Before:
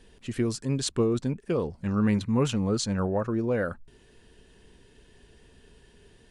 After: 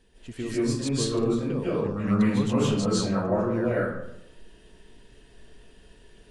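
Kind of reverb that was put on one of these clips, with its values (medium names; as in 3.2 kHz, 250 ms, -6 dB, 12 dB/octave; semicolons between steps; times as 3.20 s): algorithmic reverb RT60 0.8 s, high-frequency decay 0.6×, pre-delay 115 ms, DRR -9.5 dB; trim -7 dB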